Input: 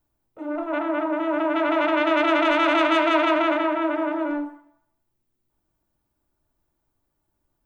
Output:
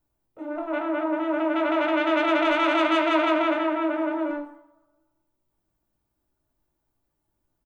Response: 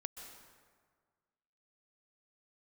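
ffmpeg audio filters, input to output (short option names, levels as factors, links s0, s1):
-filter_complex "[0:a]asplit=2[s0][s1];[s1]adelay=19,volume=0.447[s2];[s0][s2]amix=inputs=2:normalize=0,asplit=2[s3][s4];[1:a]atrim=start_sample=2205,lowpass=f=1300:w=0.5412,lowpass=f=1300:w=1.3066,lowshelf=f=370:g=-10.5[s5];[s4][s5]afir=irnorm=-1:irlink=0,volume=0.188[s6];[s3][s6]amix=inputs=2:normalize=0,volume=0.708"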